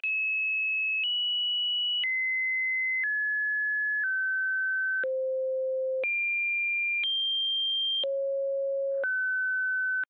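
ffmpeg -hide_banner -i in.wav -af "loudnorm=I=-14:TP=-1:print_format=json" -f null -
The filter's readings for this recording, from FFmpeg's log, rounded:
"input_i" : "-26.7",
"input_tp" : "-22.5",
"input_lra" : "1.6",
"input_thresh" : "-36.7",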